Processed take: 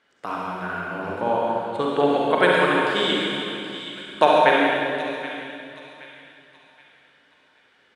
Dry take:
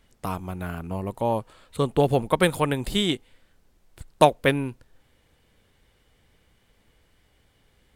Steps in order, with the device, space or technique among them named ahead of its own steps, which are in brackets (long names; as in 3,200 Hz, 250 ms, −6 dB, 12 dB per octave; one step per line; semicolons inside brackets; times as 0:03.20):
station announcement (band-pass filter 330–4,800 Hz; parametric band 1,500 Hz +8 dB 0.51 octaves; loudspeakers that aren't time-aligned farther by 23 metres −10 dB, 47 metres −11 dB; convolution reverb RT60 2.6 s, pre-delay 37 ms, DRR −3 dB)
0:01.09–0:01.82: low-shelf EQ 150 Hz +9.5 dB
delay with a high-pass on its return 774 ms, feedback 35%, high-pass 1,800 Hz, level −11 dB
level −1 dB